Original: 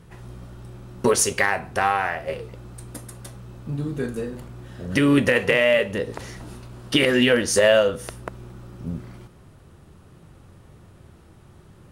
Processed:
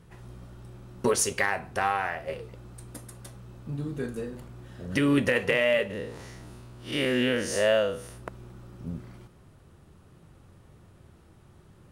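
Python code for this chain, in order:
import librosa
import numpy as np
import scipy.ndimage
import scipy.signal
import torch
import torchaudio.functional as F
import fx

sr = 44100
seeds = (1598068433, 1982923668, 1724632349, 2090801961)

y = fx.spec_blur(x, sr, span_ms=123.0, at=(5.89, 8.17), fade=0.02)
y = F.gain(torch.from_numpy(y), -5.5).numpy()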